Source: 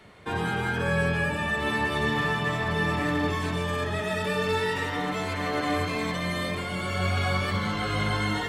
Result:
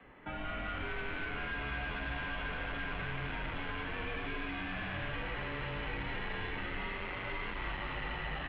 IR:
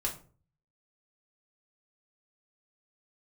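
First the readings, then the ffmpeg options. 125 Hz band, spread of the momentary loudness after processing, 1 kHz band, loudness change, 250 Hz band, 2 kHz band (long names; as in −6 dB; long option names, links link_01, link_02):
−14.0 dB, 1 LU, −12.0 dB, −11.5 dB, −14.5 dB, −9.5 dB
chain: -filter_complex "[0:a]dynaudnorm=framelen=300:gausssize=5:maxgain=10dB,asplit=8[link_01][link_02][link_03][link_04][link_05][link_06][link_07][link_08];[link_02]adelay=222,afreqshift=-92,volume=-5dB[link_09];[link_03]adelay=444,afreqshift=-184,volume=-10.5dB[link_10];[link_04]adelay=666,afreqshift=-276,volume=-16dB[link_11];[link_05]adelay=888,afreqshift=-368,volume=-21.5dB[link_12];[link_06]adelay=1110,afreqshift=-460,volume=-27.1dB[link_13];[link_07]adelay=1332,afreqshift=-552,volume=-32.6dB[link_14];[link_08]adelay=1554,afreqshift=-644,volume=-38.1dB[link_15];[link_01][link_09][link_10][link_11][link_12][link_13][link_14][link_15]amix=inputs=8:normalize=0,aresample=16000,asoftclip=type=hard:threshold=-22dB,aresample=44100,highpass=frequency=190:width_type=q:width=0.5412,highpass=frequency=190:width_type=q:width=1.307,lowpass=frequency=3000:width_type=q:width=0.5176,lowpass=frequency=3000:width_type=q:width=0.7071,lowpass=frequency=3000:width_type=q:width=1.932,afreqshift=-160,acrossover=split=84|2000[link_16][link_17][link_18];[link_16]acompressor=threshold=-35dB:ratio=4[link_19];[link_17]acompressor=threshold=-39dB:ratio=4[link_20];[link_18]acompressor=threshold=-39dB:ratio=4[link_21];[link_19][link_20][link_21]amix=inputs=3:normalize=0,volume=-4dB"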